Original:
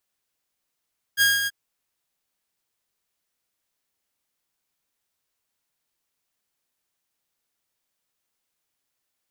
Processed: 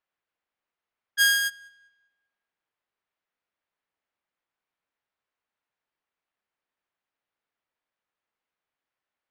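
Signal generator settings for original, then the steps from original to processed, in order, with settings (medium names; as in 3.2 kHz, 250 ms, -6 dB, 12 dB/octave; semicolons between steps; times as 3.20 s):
ADSR saw 1.63 kHz, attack 44 ms, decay 188 ms, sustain -8 dB, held 0.30 s, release 34 ms -12.5 dBFS
level-controlled noise filter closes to 2.1 kHz, open at -33.5 dBFS; bass shelf 330 Hz -9 dB; filtered feedback delay 198 ms, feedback 32%, low-pass 3.9 kHz, level -23 dB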